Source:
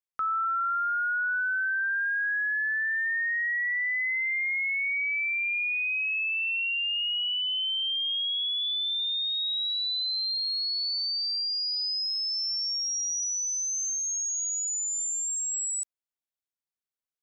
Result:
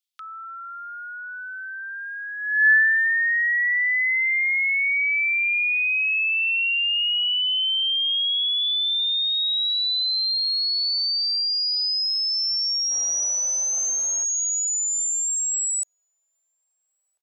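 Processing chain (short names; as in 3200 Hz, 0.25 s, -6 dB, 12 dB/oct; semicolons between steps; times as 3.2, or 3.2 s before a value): outdoor echo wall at 230 m, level -27 dB; 12.9–14.23 added noise brown -42 dBFS; high-pass sweep 3400 Hz -> 600 Hz, 2.37–3.17; gain +6 dB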